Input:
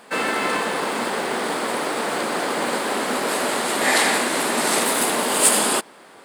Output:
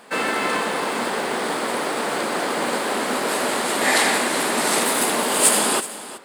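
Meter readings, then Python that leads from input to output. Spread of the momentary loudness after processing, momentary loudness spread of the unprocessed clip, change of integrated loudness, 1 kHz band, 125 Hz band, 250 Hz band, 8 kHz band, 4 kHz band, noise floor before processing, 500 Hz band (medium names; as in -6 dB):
7 LU, 8 LU, 0.0 dB, 0.0 dB, 0.0 dB, 0.0 dB, 0.0 dB, 0.0 dB, -47 dBFS, 0.0 dB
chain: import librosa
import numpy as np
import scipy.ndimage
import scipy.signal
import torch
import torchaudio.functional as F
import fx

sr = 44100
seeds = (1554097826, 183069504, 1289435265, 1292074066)

y = x + 10.0 ** (-15.5 / 20.0) * np.pad(x, (int(374 * sr / 1000.0), 0))[:len(x)]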